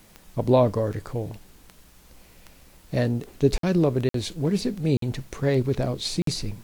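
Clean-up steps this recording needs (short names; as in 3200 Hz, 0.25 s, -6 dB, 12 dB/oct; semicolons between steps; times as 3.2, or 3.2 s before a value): de-click; interpolate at 3.58/4.09/4.97/6.22, 53 ms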